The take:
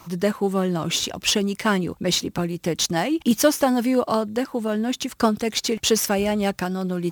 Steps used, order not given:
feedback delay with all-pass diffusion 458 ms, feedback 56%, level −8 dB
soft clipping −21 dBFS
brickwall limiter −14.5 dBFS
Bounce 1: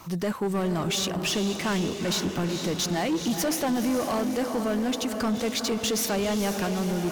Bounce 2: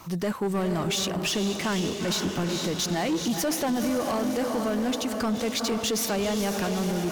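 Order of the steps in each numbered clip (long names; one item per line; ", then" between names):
brickwall limiter, then feedback delay with all-pass diffusion, then soft clipping
feedback delay with all-pass diffusion, then brickwall limiter, then soft clipping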